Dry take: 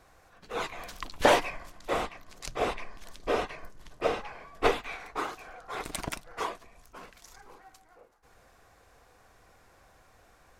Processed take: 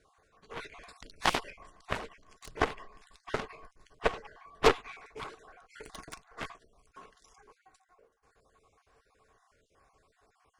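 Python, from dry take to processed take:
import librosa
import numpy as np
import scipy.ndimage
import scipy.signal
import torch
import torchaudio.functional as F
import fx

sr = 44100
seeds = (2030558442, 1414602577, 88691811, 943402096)

y = fx.spec_dropout(x, sr, seeds[0], share_pct=31)
y = scipy.signal.sosfilt(scipy.signal.cheby1(8, 1.0, 11000.0, 'lowpass', fs=sr, output='sos'), y)
y = fx.small_body(y, sr, hz=(440.0, 1100.0), ring_ms=45, db=10)
y = fx.cheby_harmonics(y, sr, harmonics=(4, 7), levels_db=(-14, -13), full_scale_db=-8.5)
y = fx.notch(y, sr, hz=490.0, q=12.0)
y = y * librosa.db_to_amplitude(-2.0)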